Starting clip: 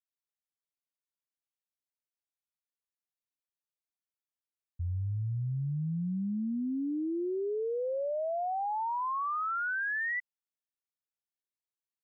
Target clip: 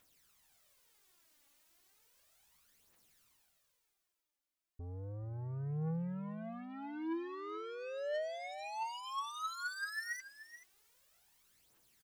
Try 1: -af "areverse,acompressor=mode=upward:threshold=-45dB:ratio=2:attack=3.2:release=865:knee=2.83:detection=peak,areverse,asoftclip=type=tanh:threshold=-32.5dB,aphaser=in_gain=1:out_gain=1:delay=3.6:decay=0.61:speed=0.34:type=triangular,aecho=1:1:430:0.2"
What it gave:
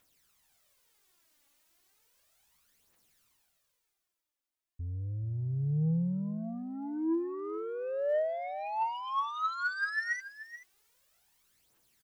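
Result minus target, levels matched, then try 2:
soft clipping: distortion −9 dB
-af "areverse,acompressor=mode=upward:threshold=-45dB:ratio=2:attack=3.2:release=865:knee=2.83:detection=peak,areverse,asoftclip=type=tanh:threshold=-43dB,aphaser=in_gain=1:out_gain=1:delay=3.6:decay=0.61:speed=0.34:type=triangular,aecho=1:1:430:0.2"

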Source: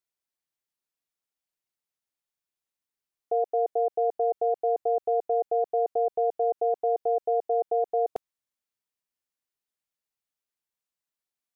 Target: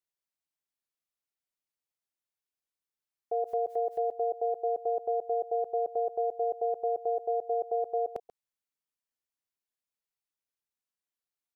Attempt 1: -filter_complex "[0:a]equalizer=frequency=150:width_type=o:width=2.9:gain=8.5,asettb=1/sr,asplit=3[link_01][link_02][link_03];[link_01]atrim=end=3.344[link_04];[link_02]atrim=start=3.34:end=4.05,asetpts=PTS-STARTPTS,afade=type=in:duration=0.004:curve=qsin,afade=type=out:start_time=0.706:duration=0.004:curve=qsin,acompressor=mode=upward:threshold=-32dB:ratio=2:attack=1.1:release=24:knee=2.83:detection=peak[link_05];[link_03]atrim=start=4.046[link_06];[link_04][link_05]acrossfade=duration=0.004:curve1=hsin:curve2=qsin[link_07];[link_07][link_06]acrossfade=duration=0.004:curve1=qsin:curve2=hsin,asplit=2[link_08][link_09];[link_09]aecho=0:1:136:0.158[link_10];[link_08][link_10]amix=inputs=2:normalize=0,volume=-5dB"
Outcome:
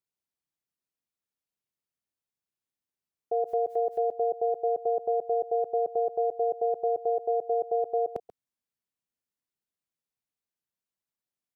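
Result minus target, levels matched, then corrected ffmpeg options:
125 Hz band +5.0 dB
-filter_complex "[0:a]asettb=1/sr,asplit=3[link_01][link_02][link_03];[link_01]atrim=end=3.344[link_04];[link_02]atrim=start=3.34:end=4.05,asetpts=PTS-STARTPTS,afade=type=in:duration=0.004:curve=qsin,afade=type=out:start_time=0.706:duration=0.004:curve=qsin,acompressor=mode=upward:threshold=-32dB:ratio=2:attack=1.1:release=24:knee=2.83:detection=peak[link_05];[link_03]atrim=start=4.046[link_06];[link_04][link_05]acrossfade=duration=0.004:curve1=hsin:curve2=qsin[link_07];[link_07][link_06]acrossfade=duration=0.004:curve1=qsin:curve2=hsin,asplit=2[link_08][link_09];[link_09]aecho=0:1:136:0.158[link_10];[link_08][link_10]amix=inputs=2:normalize=0,volume=-5dB"

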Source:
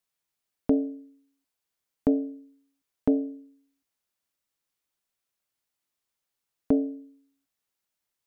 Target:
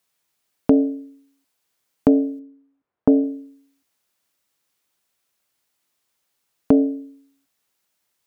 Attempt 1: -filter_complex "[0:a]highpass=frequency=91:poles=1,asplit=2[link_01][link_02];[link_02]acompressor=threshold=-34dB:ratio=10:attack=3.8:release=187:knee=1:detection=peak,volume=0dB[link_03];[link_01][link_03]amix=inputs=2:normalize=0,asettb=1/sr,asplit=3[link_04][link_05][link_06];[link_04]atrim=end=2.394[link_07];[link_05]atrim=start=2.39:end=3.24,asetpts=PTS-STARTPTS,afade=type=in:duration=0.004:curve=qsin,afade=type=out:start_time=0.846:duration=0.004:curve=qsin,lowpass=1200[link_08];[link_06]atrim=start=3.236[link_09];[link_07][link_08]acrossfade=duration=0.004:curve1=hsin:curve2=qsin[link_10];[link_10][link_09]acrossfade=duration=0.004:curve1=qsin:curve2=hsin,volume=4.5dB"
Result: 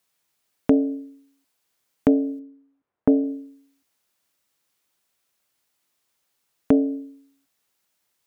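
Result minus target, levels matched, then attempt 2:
downward compressor: peak gain reduction +11 dB
-filter_complex "[0:a]highpass=frequency=91:poles=1,asplit=2[link_01][link_02];[link_02]acompressor=threshold=-22dB:ratio=10:attack=3.8:release=187:knee=1:detection=peak,volume=0dB[link_03];[link_01][link_03]amix=inputs=2:normalize=0,asettb=1/sr,asplit=3[link_04][link_05][link_06];[link_04]atrim=end=2.394[link_07];[link_05]atrim=start=2.39:end=3.24,asetpts=PTS-STARTPTS,afade=type=in:duration=0.004:curve=qsin,afade=type=out:start_time=0.846:duration=0.004:curve=qsin,lowpass=1200[link_08];[link_06]atrim=start=3.236[link_09];[link_07][link_08]acrossfade=duration=0.004:curve1=hsin:curve2=qsin[link_10];[link_10][link_09]acrossfade=duration=0.004:curve1=qsin:curve2=hsin,volume=4.5dB"

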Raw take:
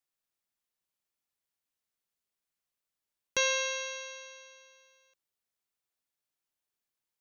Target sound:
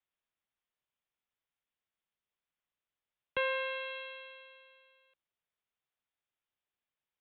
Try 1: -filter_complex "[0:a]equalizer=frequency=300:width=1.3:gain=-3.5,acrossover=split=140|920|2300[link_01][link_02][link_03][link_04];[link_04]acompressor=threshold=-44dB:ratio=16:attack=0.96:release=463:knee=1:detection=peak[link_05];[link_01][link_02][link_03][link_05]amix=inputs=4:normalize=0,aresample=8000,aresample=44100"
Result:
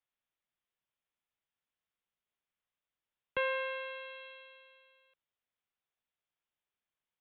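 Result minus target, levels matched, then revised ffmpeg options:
downward compressor: peak gain reduction +7 dB
-filter_complex "[0:a]equalizer=frequency=300:width=1.3:gain=-3.5,acrossover=split=140|920|2300[link_01][link_02][link_03][link_04];[link_04]acompressor=threshold=-36.5dB:ratio=16:attack=0.96:release=463:knee=1:detection=peak[link_05];[link_01][link_02][link_03][link_05]amix=inputs=4:normalize=0,aresample=8000,aresample=44100"

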